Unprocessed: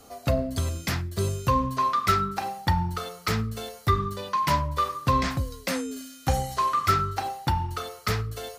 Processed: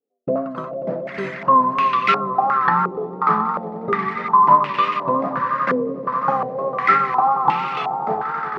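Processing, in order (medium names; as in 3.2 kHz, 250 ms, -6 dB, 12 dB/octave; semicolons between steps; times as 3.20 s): steep high-pass 160 Hz 48 dB/octave; gate -33 dBFS, range -40 dB; echo with a slow build-up 90 ms, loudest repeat 5, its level -12.5 dB; vibrato 2.9 Hz 55 cents; step-sequenced low-pass 2.8 Hz 440–2600 Hz; trim +3 dB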